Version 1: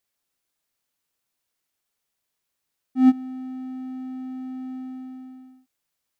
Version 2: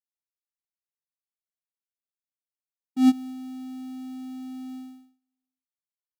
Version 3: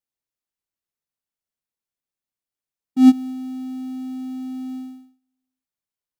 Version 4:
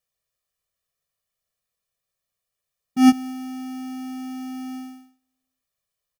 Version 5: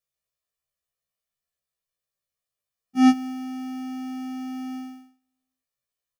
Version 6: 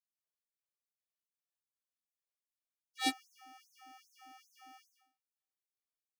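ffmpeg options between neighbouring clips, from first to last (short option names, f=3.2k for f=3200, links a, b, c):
-af "agate=range=-41dB:threshold=-34dB:ratio=16:detection=peak,aexciter=amount=5.6:drive=3.8:freq=2.7k,volume=-2dB"
-af "lowshelf=f=470:g=6,volume=2.5dB"
-af "aecho=1:1:1.7:0.9,volume=5dB"
-af "asoftclip=type=tanh:threshold=-8.5dB,afftfilt=real='re*1.73*eq(mod(b,3),0)':imag='im*1.73*eq(mod(b,3),0)':win_size=2048:overlap=0.75,volume=-3dB"
-af "aeval=exprs='0.299*(cos(1*acos(clip(val(0)/0.299,-1,1)))-cos(1*PI/2))+0.133*(cos(3*acos(clip(val(0)/0.299,-1,1)))-cos(3*PI/2))':c=same,afftfilt=real='re*gte(b*sr/1024,270*pow(6100/270,0.5+0.5*sin(2*PI*2.5*pts/sr)))':imag='im*gte(b*sr/1024,270*pow(6100/270,0.5+0.5*sin(2*PI*2.5*pts/sr)))':win_size=1024:overlap=0.75,volume=-2.5dB"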